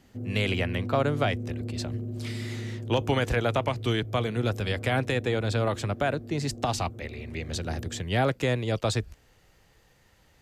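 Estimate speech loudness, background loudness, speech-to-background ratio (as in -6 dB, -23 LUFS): -28.5 LUFS, -37.5 LUFS, 9.0 dB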